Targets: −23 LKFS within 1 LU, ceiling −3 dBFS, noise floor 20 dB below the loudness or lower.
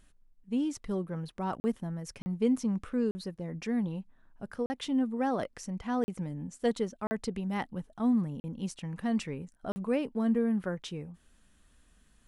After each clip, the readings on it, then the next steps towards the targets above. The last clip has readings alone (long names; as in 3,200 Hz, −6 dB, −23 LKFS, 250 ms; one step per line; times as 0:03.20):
number of dropouts 8; longest dropout 40 ms; integrated loudness −33.0 LKFS; sample peak −16.5 dBFS; target loudness −23.0 LKFS
→ repair the gap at 0:01.60/0:02.22/0:03.11/0:04.66/0:06.04/0:07.07/0:08.40/0:09.72, 40 ms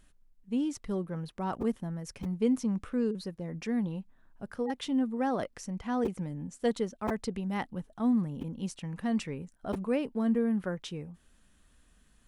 number of dropouts 0; integrated loudness −33.0 LKFS; sample peak −16.5 dBFS; target loudness −23.0 LKFS
→ level +10 dB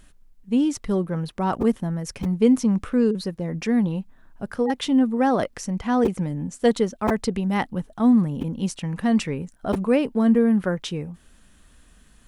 integrated loudness −23.0 LKFS; sample peak −6.5 dBFS; background noise floor −55 dBFS